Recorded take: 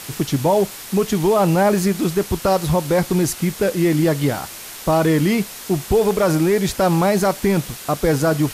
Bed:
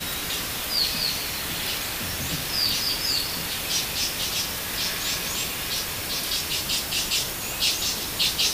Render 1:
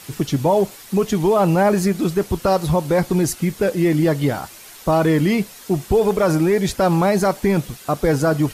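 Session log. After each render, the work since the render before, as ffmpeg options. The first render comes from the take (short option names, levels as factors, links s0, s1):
-af "afftdn=nr=8:nf=-35"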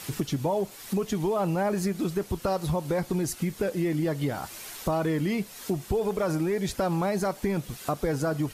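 -af "acompressor=threshold=0.0355:ratio=2.5"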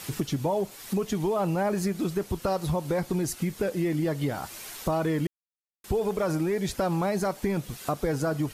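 -filter_complex "[0:a]asplit=3[s0][s1][s2];[s0]atrim=end=5.27,asetpts=PTS-STARTPTS,afade=t=out:st=5.266:d=0.004:c=hsin[s3];[s1]atrim=start=5.27:end=5.84,asetpts=PTS-STARTPTS,volume=0[s4];[s2]atrim=start=5.84,asetpts=PTS-STARTPTS,afade=t=in:d=0.004:c=hsin[s5];[s3][s4][s5]concat=n=3:v=0:a=1"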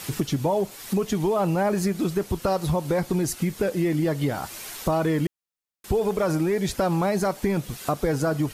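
-af "volume=1.5"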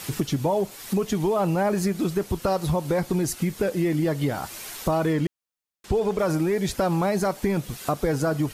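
-filter_complex "[0:a]asettb=1/sr,asplit=3[s0][s1][s2];[s0]atrim=end=5.134[s3];[s1]atrim=start=5.13:end=6.19,asetpts=PTS-STARTPTS,afade=t=in:d=0.004:c=qsin,afade=t=out:st=1.056:d=0.004:c=qsin,acrossover=split=7900[s4][s5];[s5]acompressor=threshold=0.00126:ratio=4:attack=1:release=60[s6];[s4][s6]amix=inputs=2:normalize=0[s7];[s2]atrim=start=6.186[s8];[s3][s7]acrossfade=d=0.004:c1=hsin:c2=qsin[s9];[s9][s8]acrossfade=d=0.004:c1=qsin:c2=hsin"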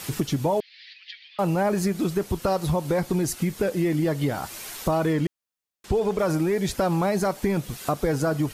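-filter_complex "[0:a]asettb=1/sr,asplit=3[s0][s1][s2];[s0]atrim=end=0.604[s3];[s1]atrim=start=0.6:end=1.39,asetpts=PTS-STARTPTS,afade=t=in:d=0.004:c=qsin,afade=t=out:st=0.786:d=0.004:c=qsin,asuperpass=centerf=2900:order=12:qfactor=0.98[s4];[s2]atrim=start=1.386[s5];[s3][s4]acrossfade=d=0.004:c1=hsin:c2=qsin[s6];[s6][s5]acrossfade=d=0.004:c1=qsin:c2=hsin"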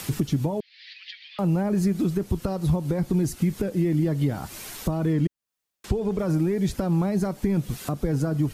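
-filter_complex "[0:a]acrossover=split=310[s0][s1];[s1]acompressor=threshold=0.00501:ratio=2[s2];[s0][s2]amix=inputs=2:normalize=0,asplit=2[s3][s4];[s4]alimiter=limit=0.075:level=0:latency=1:release=267,volume=0.794[s5];[s3][s5]amix=inputs=2:normalize=0"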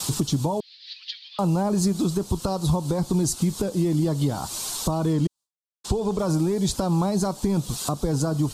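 -af "agate=range=0.0224:threshold=0.00891:ratio=3:detection=peak,equalizer=f=1000:t=o:w=1:g=10,equalizer=f=2000:t=o:w=1:g=-11,equalizer=f=4000:t=o:w=1:g=10,equalizer=f=8000:t=o:w=1:g=11"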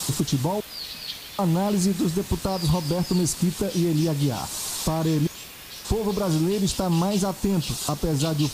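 -filter_complex "[1:a]volume=0.251[s0];[0:a][s0]amix=inputs=2:normalize=0"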